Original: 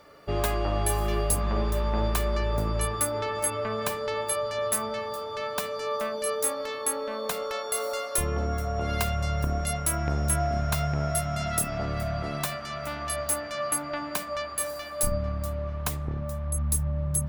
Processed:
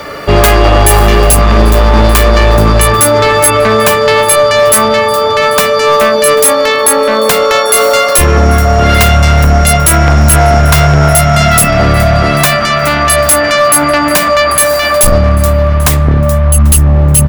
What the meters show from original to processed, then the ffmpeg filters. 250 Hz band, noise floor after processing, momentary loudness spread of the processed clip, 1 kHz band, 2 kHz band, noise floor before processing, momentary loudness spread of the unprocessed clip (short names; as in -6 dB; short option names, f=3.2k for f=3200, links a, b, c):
+21.5 dB, -11 dBFS, 3 LU, +22.5 dB, +24.5 dB, -36 dBFS, 5 LU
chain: -filter_complex "[0:a]acrossover=split=210|1500|2000[a][b][c][d];[c]crystalizer=i=9:c=0[e];[a][b][e][d]amix=inputs=4:normalize=0,volume=25.5dB,asoftclip=hard,volume=-25.5dB,aecho=1:1:791:0.0944,alimiter=level_in=30dB:limit=-1dB:release=50:level=0:latency=1,volume=-1dB"